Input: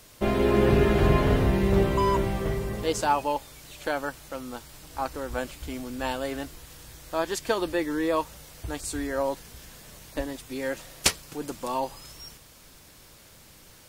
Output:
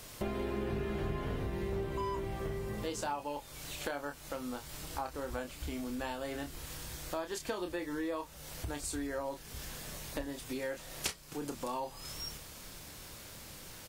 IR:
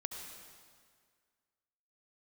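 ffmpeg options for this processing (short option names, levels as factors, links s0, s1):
-filter_complex "[0:a]asplit=2[s0][s1];[s1]adelay=28,volume=0.447[s2];[s0][s2]amix=inputs=2:normalize=0,acompressor=threshold=0.0112:ratio=4,volume=1.26"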